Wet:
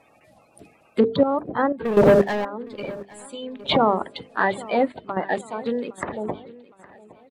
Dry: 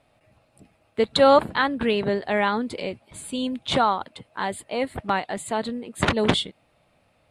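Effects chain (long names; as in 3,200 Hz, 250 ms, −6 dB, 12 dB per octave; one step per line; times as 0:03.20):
spectral magnitudes quantised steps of 30 dB
treble cut that deepens with the level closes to 750 Hz, closed at −19.5 dBFS
high-pass filter 190 Hz 6 dB per octave
mains-hum notches 50/100/150/200/250/300/350/400/450 Hz
0:01.85–0:02.45: leveller curve on the samples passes 3
gate pattern "xxxxx.x.x......" 61 BPM −12 dB
on a send: repeating echo 813 ms, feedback 44%, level −20 dB
on the sum: boost into a limiter +14 dB
level −6 dB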